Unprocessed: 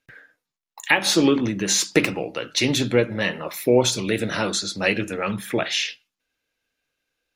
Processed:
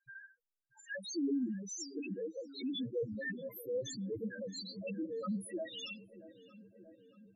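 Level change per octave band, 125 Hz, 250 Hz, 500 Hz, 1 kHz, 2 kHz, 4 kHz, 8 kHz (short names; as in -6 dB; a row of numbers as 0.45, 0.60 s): -19.5, -14.5, -17.5, -26.5, -22.0, -21.5, -21.5 dB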